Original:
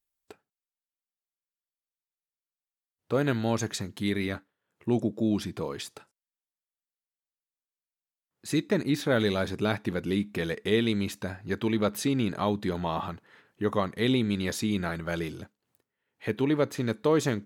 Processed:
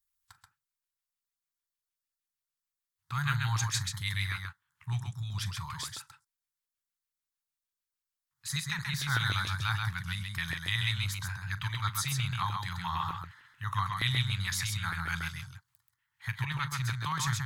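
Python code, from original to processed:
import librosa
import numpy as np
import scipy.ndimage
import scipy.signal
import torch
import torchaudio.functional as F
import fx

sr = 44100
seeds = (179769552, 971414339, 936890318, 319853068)

p1 = scipy.signal.sosfilt(scipy.signal.cheby2(4, 40, [220.0, 630.0], 'bandstop', fs=sr, output='sos'), x)
p2 = fx.filter_lfo_notch(p1, sr, shape='square', hz=6.6, low_hz=290.0, high_hz=2600.0, q=1.2)
p3 = p2 + fx.echo_multitap(p2, sr, ms=(41, 132), db=(-16.5, -4.0), dry=0)
y = p3 * 10.0 ** (2.0 / 20.0)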